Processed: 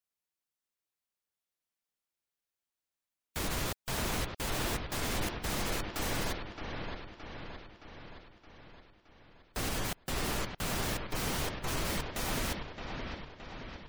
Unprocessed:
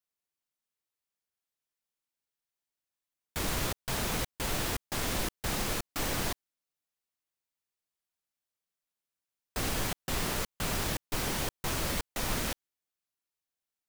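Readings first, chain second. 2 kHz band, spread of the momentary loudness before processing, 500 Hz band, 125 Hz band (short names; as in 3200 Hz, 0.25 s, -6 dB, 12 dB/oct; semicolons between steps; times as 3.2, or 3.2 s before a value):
-1.0 dB, 4 LU, -0.5 dB, -0.5 dB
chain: dark delay 0.619 s, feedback 57%, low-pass 3800 Hz, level -5.5 dB; spectral gate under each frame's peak -30 dB strong; gain -2 dB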